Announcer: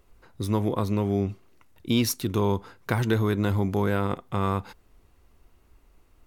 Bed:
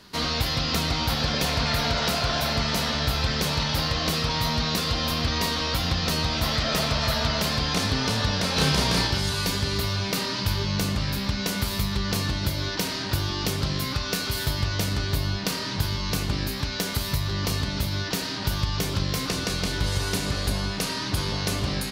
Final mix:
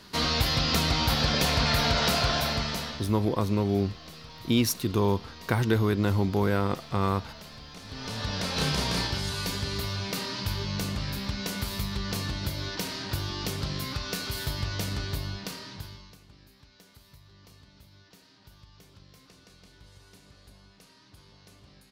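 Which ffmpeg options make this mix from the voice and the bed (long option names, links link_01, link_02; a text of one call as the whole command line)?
ffmpeg -i stem1.wav -i stem2.wav -filter_complex "[0:a]adelay=2600,volume=-0.5dB[link_01];[1:a]volume=15dB,afade=type=out:start_time=2.22:duration=0.89:silence=0.0944061,afade=type=in:start_time=7.84:duration=0.57:silence=0.177828,afade=type=out:start_time=14.98:duration=1.18:silence=0.0749894[link_02];[link_01][link_02]amix=inputs=2:normalize=0" out.wav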